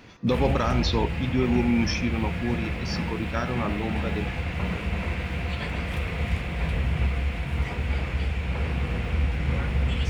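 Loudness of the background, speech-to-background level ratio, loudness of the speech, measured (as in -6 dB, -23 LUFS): -29.0 LUFS, 1.5 dB, -27.5 LUFS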